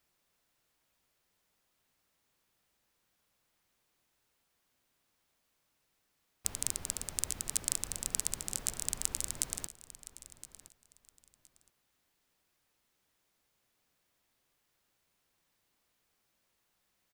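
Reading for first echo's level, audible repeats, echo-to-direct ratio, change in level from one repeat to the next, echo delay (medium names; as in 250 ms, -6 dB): -16.0 dB, 2, -16.0 dB, -13.5 dB, 1017 ms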